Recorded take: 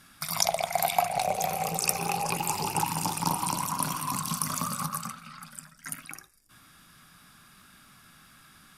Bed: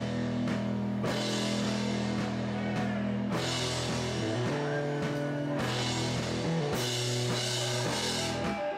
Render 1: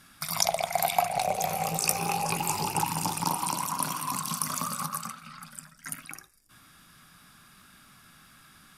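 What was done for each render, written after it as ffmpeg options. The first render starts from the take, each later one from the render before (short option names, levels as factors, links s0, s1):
-filter_complex "[0:a]asettb=1/sr,asplit=3[s0][s1][s2];[s0]atrim=end=1.454[s3];[s1]atrim=start=1.45:end=2.66,asetpts=PTS-STARTPTS,afade=t=in:d=0.004:c=qsin,afade=t=out:st=1.206:d=0.004:c=qsin,asplit=2[s4][s5];[s5]adelay=19,volume=0.398[s6];[s4][s6]amix=inputs=2:normalize=0,atrim=end_sample=53361[s7];[s2]atrim=start=2.656[s8];[s3][s7]acrossfade=d=0.004:c1=hsin:c2=qsin[s9];[s9][s8]acrossfade=d=0.004:c1=qsin:c2=hsin,asettb=1/sr,asplit=3[s10][s11][s12];[s10]atrim=end=3.244[s13];[s11]atrim=start=3.24:end=5.23,asetpts=PTS-STARTPTS,afade=t=in:d=0.004:c=qsin,afade=t=out:st=1.986:d=0.004:c=qsin,lowshelf=f=110:g=-12[s14];[s12]atrim=start=5.226[s15];[s13][s14]acrossfade=d=0.004:c1=hsin:c2=qsin[s16];[s16][s15]acrossfade=d=0.004:c1=qsin:c2=hsin"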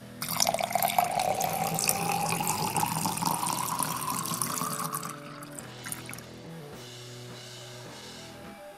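-filter_complex "[1:a]volume=0.224[s0];[0:a][s0]amix=inputs=2:normalize=0"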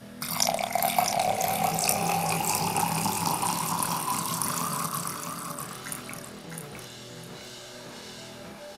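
-filter_complex "[0:a]asplit=2[s0][s1];[s1]adelay=29,volume=0.447[s2];[s0][s2]amix=inputs=2:normalize=0,aecho=1:1:657|1314|1971:0.531|0.133|0.0332"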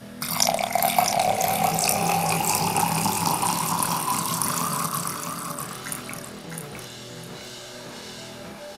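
-af "volume=1.58,alimiter=limit=0.891:level=0:latency=1"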